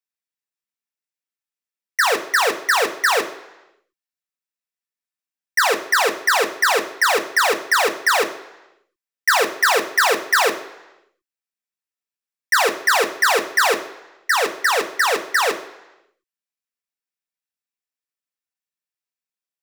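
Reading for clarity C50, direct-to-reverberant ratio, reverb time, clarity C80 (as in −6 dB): 12.5 dB, 5.0 dB, 1.0 s, 15.0 dB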